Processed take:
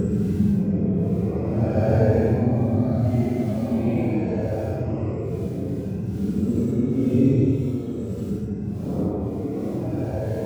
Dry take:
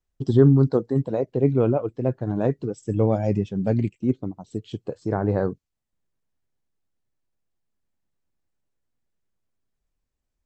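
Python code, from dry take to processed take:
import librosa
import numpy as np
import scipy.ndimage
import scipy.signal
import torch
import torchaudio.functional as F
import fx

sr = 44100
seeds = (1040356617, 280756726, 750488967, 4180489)

y = fx.reverse_delay_fb(x, sr, ms=316, feedback_pct=81, wet_db=-9)
y = fx.dmg_crackle(y, sr, seeds[0], per_s=52.0, level_db=-31.0)
y = fx.paulstretch(y, sr, seeds[1], factor=13.0, window_s=0.05, from_s=3.54)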